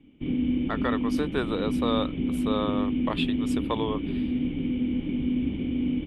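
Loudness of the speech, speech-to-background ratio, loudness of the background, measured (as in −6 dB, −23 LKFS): −32.0 LKFS, −4.0 dB, −28.0 LKFS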